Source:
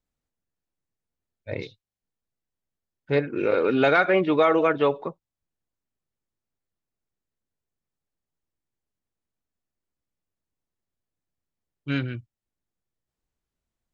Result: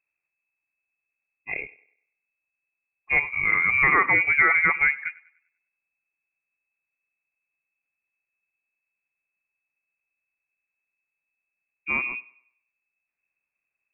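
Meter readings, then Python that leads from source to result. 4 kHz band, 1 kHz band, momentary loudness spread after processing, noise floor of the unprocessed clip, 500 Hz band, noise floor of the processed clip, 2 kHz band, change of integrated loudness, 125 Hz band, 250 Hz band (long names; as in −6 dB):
below −15 dB, −0.5 dB, 16 LU, below −85 dBFS, −17.0 dB, below −85 dBFS, +9.5 dB, +2.5 dB, −10.0 dB, −13.5 dB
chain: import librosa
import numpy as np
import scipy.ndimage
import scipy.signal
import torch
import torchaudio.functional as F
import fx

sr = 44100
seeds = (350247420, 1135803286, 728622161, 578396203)

p1 = fx.freq_invert(x, sr, carrier_hz=2600)
y = p1 + fx.echo_thinned(p1, sr, ms=98, feedback_pct=40, hz=250.0, wet_db=-20.5, dry=0)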